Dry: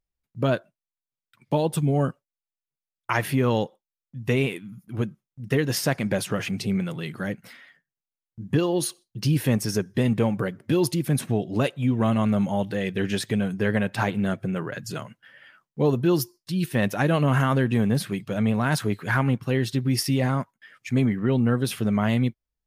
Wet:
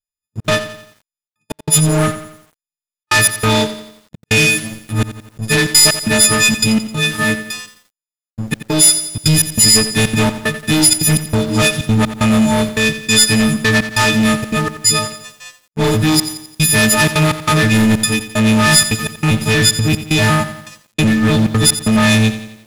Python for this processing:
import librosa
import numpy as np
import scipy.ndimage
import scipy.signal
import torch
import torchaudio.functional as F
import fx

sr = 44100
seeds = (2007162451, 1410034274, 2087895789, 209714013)

p1 = fx.freq_snap(x, sr, grid_st=6)
p2 = fx.leveller(p1, sr, passes=5)
p3 = scipy.signal.sosfilt(scipy.signal.butter(2, 11000.0, 'lowpass', fs=sr, output='sos'), p2)
p4 = fx.peak_eq(p3, sr, hz=590.0, db=-6.5, octaves=2.7)
p5 = p4 + fx.echo_single(p4, sr, ms=82, db=-19.0, dry=0)
p6 = fx.step_gate(p5, sr, bpm=188, pattern='xxxxx.xx..x', floor_db=-60.0, edge_ms=4.5)
p7 = fx.high_shelf(p6, sr, hz=7300.0, db=4.0)
p8 = fx.echo_crushed(p7, sr, ms=87, feedback_pct=55, bits=6, wet_db=-12.0)
y = p8 * librosa.db_to_amplitude(-2.0)